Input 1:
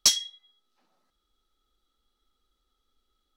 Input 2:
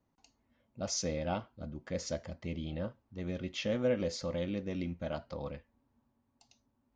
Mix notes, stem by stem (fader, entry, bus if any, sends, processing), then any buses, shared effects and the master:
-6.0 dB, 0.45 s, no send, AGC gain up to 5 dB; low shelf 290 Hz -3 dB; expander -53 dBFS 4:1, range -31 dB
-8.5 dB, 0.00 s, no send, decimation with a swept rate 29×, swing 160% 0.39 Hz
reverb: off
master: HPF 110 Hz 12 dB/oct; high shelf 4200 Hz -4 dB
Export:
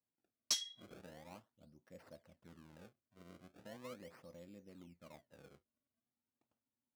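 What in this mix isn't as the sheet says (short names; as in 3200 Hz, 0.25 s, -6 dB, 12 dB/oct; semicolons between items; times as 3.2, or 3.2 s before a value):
stem 1 -6.0 dB -> -13.0 dB; stem 2 -8.5 dB -> -20.0 dB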